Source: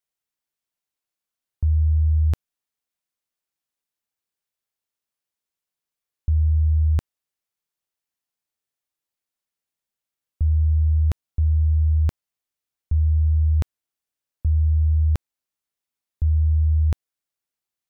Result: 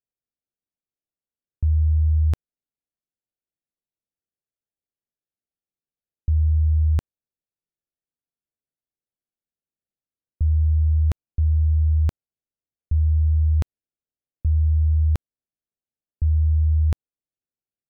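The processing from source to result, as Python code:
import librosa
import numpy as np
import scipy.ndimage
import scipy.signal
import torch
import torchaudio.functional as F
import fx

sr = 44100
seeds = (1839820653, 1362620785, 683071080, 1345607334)

y = fx.wiener(x, sr, points=41)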